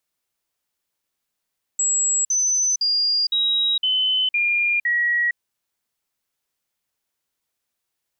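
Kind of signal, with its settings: stepped sine 7650 Hz down, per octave 3, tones 7, 0.46 s, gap 0.05 s -17 dBFS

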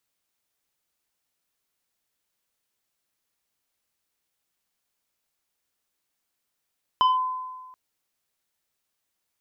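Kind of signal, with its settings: FM tone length 0.73 s, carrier 1020 Hz, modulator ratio 1.98, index 0.59, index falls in 0.17 s linear, decay 1.43 s, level -14.5 dB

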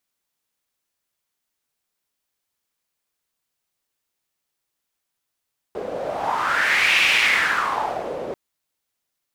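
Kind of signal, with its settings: wind-like swept noise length 2.59 s, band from 480 Hz, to 2500 Hz, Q 4.4, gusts 1, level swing 12 dB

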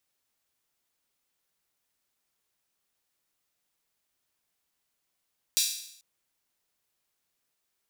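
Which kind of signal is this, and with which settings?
open hi-hat length 0.44 s, high-pass 4100 Hz, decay 0.71 s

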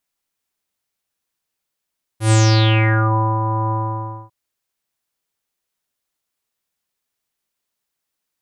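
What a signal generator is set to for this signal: synth note square A2 24 dB/oct, low-pass 1000 Hz, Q 6.5, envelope 3.5 oct, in 0.93 s, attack 0.109 s, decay 1.09 s, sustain -9.5 dB, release 0.59 s, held 1.51 s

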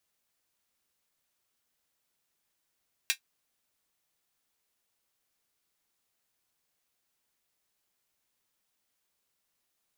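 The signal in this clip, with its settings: closed hi-hat, high-pass 2200 Hz, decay 0.10 s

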